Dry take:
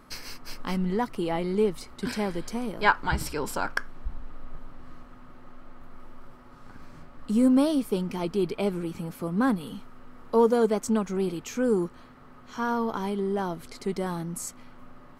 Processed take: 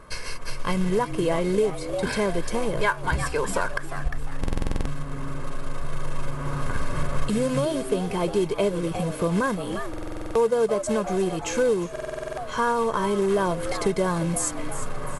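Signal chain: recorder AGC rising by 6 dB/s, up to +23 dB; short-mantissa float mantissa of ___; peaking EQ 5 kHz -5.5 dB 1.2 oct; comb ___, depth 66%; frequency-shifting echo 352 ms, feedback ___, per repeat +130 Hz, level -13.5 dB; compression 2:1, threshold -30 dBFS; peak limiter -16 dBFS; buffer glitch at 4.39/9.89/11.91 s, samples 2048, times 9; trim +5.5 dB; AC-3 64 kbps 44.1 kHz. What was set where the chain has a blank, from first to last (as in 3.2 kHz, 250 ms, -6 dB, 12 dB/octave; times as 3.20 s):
2-bit, 1.9 ms, 41%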